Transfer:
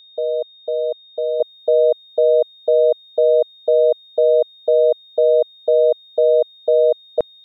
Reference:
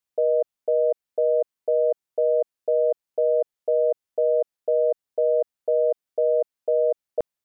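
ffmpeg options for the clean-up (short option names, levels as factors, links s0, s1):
-af "bandreject=f=3700:w=30,asetnsamples=n=441:p=0,asendcmd='1.4 volume volume -7dB',volume=1"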